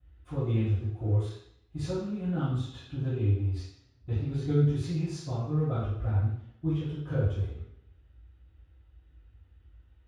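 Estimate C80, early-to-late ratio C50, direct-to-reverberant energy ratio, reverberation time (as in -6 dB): 4.0 dB, 0.0 dB, -19.0 dB, 0.70 s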